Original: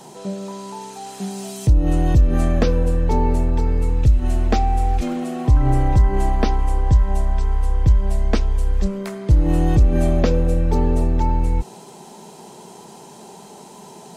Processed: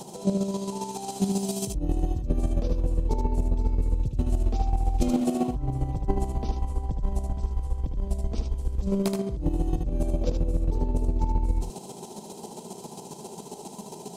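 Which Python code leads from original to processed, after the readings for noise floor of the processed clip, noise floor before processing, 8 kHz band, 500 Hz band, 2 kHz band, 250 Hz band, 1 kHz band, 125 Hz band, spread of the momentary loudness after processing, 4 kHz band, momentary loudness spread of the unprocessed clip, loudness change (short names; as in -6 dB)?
-43 dBFS, -42 dBFS, -1.0 dB, -7.5 dB, -16.5 dB, -5.5 dB, -9.5 dB, -10.0 dB, 14 LU, -6.0 dB, 12 LU, -9.0 dB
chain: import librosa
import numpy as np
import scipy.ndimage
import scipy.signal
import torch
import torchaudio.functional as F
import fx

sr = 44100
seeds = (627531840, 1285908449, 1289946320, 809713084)

p1 = fx.peak_eq(x, sr, hz=1700.0, db=-14.5, octaves=1.1)
p2 = fx.over_compress(p1, sr, threshold_db=-21.0, ratio=-1.0)
p3 = fx.chopper(p2, sr, hz=7.4, depth_pct=60, duty_pct=20)
y = p3 + fx.echo_single(p3, sr, ms=76, db=-5.0, dry=0)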